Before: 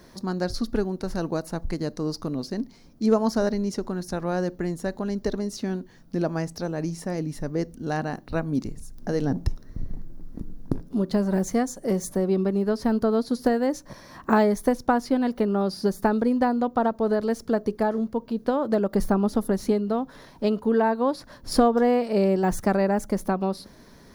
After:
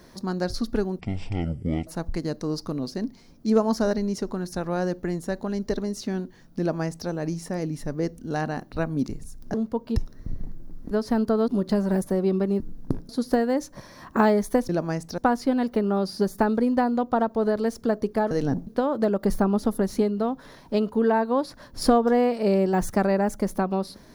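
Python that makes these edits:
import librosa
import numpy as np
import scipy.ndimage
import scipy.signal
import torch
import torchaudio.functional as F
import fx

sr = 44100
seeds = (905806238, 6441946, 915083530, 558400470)

y = fx.edit(x, sr, fx.speed_span(start_s=0.99, length_s=0.44, speed=0.5),
    fx.duplicate(start_s=6.16, length_s=0.49, to_s=14.82),
    fx.swap(start_s=9.1, length_s=0.36, other_s=17.95, other_length_s=0.42),
    fx.swap(start_s=10.41, length_s=0.49, other_s=12.65, other_length_s=0.57),
    fx.cut(start_s=11.44, length_s=0.63), tone=tone)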